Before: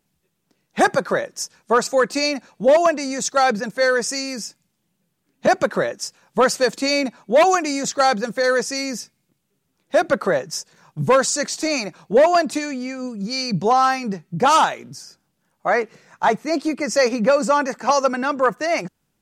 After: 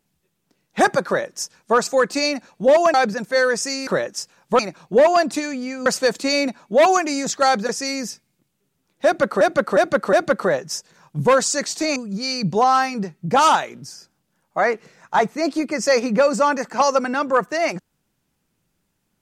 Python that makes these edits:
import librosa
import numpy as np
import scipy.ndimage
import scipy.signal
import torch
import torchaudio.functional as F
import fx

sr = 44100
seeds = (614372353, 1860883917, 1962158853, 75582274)

y = fx.edit(x, sr, fx.cut(start_s=2.94, length_s=0.46),
    fx.cut(start_s=4.33, length_s=1.39),
    fx.cut(start_s=8.27, length_s=0.32),
    fx.repeat(start_s=9.95, length_s=0.36, count=4),
    fx.move(start_s=11.78, length_s=1.27, to_s=6.44), tone=tone)